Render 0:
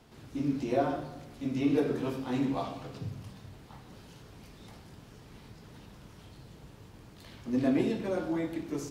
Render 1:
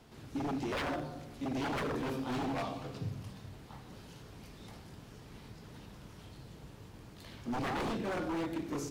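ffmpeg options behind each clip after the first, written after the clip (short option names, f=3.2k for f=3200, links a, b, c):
-af "aeval=exprs='0.0316*(abs(mod(val(0)/0.0316+3,4)-2)-1)':c=same"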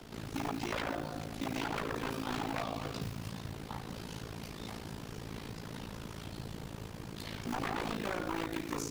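-filter_complex "[0:a]acrusher=bits=7:mode=log:mix=0:aa=0.000001,acrossover=split=110|850[a][b][c];[a]acompressor=threshold=-57dB:ratio=4[d];[b]acompressor=threshold=-48dB:ratio=4[e];[c]acompressor=threshold=-47dB:ratio=4[f];[d][e][f]amix=inputs=3:normalize=0,tremolo=f=55:d=0.857,volume=12dB"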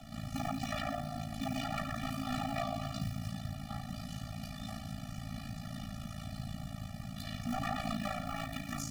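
-af "afftfilt=real='re*eq(mod(floor(b*sr/1024/280),2),0)':imag='im*eq(mod(floor(b*sr/1024/280),2),0)':win_size=1024:overlap=0.75,volume=3dB"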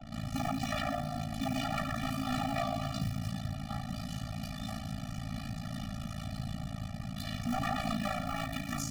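-filter_complex "[0:a]anlmdn=0.00158,asplit=2[a][b];[b]asoftclip=type=tanh:threshold=-32dB,volume=-5dB[c];[a][c]amix=inputs=2:normalize=0"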